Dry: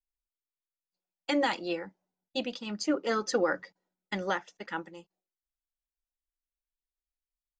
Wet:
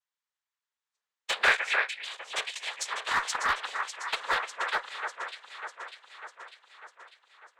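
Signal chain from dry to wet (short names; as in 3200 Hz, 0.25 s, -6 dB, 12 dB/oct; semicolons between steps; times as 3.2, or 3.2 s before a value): in parallel at -2 dB: compressor, threshold -36 dBFS, peak gain reduction 13.5 dB; on the sum: elliptic high-pass 950 Hz, stop band 70 dB; high shelf 3100 Hz -11 dB; noise vocoder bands 6; on a send: echo with dull and thin repeats by turns 0.299 s, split 2400 Hz, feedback 76%, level -5.5 dB; on the sum: one-sided clip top -29.5 dBFS; spectral gain 1.43–2.01, 1300–2700 Hz +8 dB; gain +7.5 dB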